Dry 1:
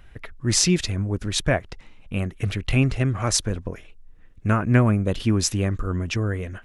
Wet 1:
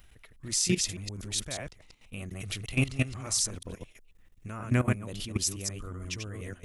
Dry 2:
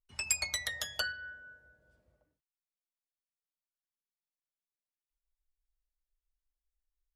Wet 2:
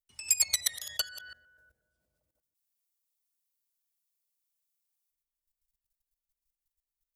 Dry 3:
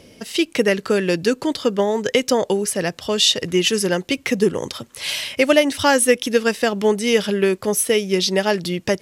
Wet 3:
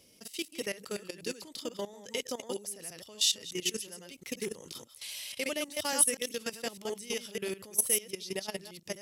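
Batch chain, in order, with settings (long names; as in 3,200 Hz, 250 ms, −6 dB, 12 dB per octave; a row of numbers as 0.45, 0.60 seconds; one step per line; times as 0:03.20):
delay that plays each chunk backwards 121 ms, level −3 dB
parametric band 1,600 Hz −4.5 dB 0.3 octaves
output level in coarse steps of 16 dB
first-order pre-emphasis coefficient 0.8
normalise the peak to −9 dBFS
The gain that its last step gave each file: +7.0, +11.0, −4.5 decibels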